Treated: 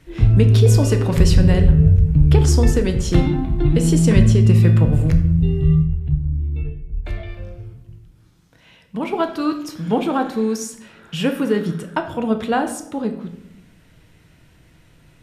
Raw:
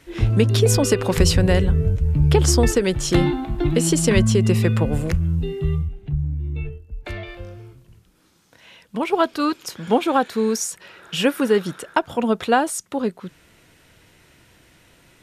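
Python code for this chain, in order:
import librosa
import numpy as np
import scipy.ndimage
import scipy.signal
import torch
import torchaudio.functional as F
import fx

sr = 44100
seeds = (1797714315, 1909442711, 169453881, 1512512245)

y = fx.bass_treble(x, sr, bass_db=9, treble_db=-2)
y = fx.room_shoebox(y, sr, seeds[0], volume_m3=210.0, walls='mixed', distance_m=0.52)
y = y * librosa.db_to_amplitude(-4.0)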